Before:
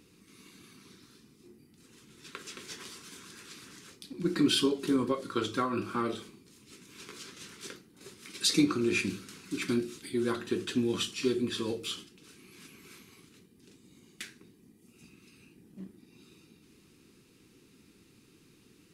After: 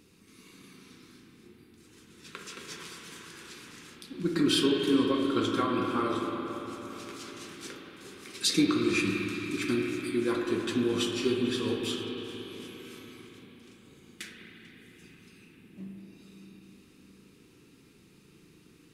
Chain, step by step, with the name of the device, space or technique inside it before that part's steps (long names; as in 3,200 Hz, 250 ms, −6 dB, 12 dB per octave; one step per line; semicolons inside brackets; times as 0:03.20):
dub delay into a spring reverb (feedback echo with a low-pass in the loop 443 ms, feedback 69%, low-pass 3,700 Hz, level −17 dB; spring reverb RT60 3.9 s, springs 36/57 ms, chirp 65 ms, DRR 0 dB)